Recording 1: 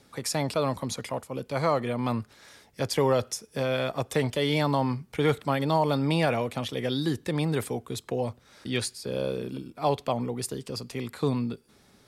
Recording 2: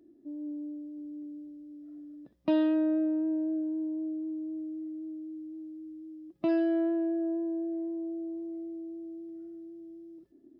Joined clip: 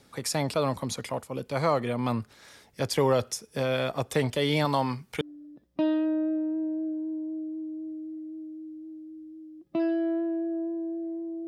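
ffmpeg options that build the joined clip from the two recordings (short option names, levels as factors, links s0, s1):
-filter_complex "[0:a]asettb=1/sr,asplit=3[s0][s1][s2];[s0]atrim=end=4.654[s3];[s1]atrim=start=4.65:end=5.21,asetpts=PTS-STARTPTS,afade=t=in:d=0.004:c=qsin,afade=t=out:st=0.556:d=0.004:c=qsin,tiltshelf=f=650:g=-4[s4];[s2]atrim=start=5.206[s5];[s3][s4]acrossfade=d=0.004:c1=hsin:c2=qsin[s6];[s6][s5]acrossfade=d=0.004:c1=qsin:c2=hsin,apad=whole_dur=11.47,atrim=end=11.47,atrim=end=5.212[s7];[1:a]atrim=start=1.898:end=8.16[s8];[s7][s8]acrossfade=d=0.004:c1=hsin:c2=hsin"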